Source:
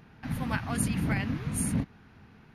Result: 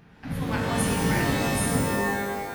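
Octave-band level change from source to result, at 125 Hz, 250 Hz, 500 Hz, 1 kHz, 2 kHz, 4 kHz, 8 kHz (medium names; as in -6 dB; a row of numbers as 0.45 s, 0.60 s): +3.5 dB, +5.0 dB, +15.0 dB, +11.5 dB, +9.0 dB, +11.5 dB, +4.5 dB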